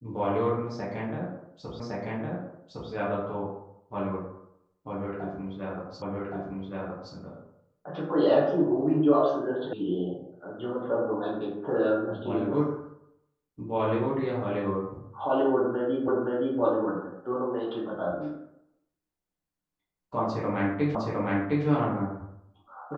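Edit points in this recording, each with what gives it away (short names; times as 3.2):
1.8 repeat of the last 1.11 s
6.02 repeat of the last 1.12 s
9.73 sound cut off
16.08 repeat of the last 0.52 s
20.95 repeat of the last 0.71 s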